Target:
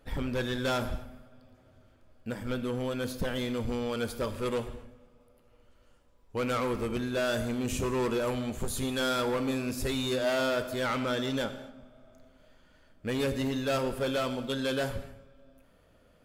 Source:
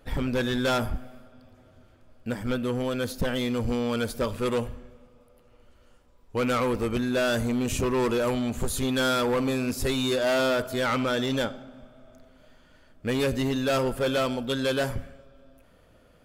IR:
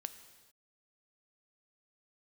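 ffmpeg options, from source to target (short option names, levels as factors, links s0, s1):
-filter_complex "[1:a]atrim=start_sample=2205,afade=t=out:st=0.38:d=0.01,atrim=end_sample=17199,asetrate=52920,aresample=44100[s0];[0:a][s0]afir=irnorm=-1:irlink=0"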